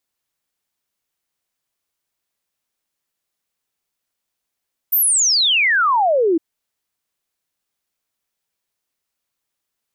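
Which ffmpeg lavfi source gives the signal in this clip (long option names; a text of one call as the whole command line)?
ffmpeg -f lavfi -i "aevalsrc='0.237*clip(min(t,1.46-t)/0.01,0,1)*sin(2*PI*15000*1.46/log(310/15000)*(exp(log(310/15000)*t/1.46)-1))':duration=1.46:sample_rate=44100" out.wav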